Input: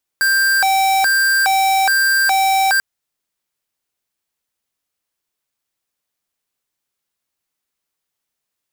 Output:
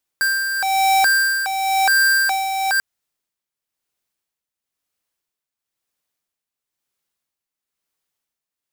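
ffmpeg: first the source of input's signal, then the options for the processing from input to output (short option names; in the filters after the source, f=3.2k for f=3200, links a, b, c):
-f lavfi -i "aevalsrc='0.188*(2*lt(mod((1176.5*t+403.5/1.2*(0.5-abs(mod(1.2*t,1)-0.5))),1),0.5)-1)':d=2.59:s=44100"
-af "tremolo=f=1:d=0.61"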